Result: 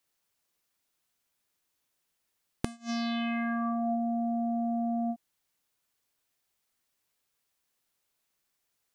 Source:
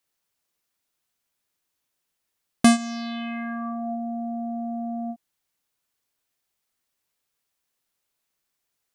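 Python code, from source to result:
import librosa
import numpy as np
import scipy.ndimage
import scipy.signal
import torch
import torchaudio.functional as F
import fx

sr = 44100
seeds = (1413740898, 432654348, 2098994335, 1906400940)

y = fx.gate_flip(x, sr, shuts_db=-16.0, range_db=-28)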